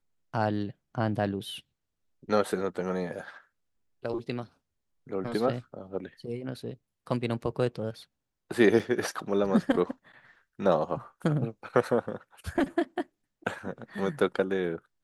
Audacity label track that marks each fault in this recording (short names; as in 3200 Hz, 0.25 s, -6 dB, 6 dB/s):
8.790000	8.800000	gap 6.6 ms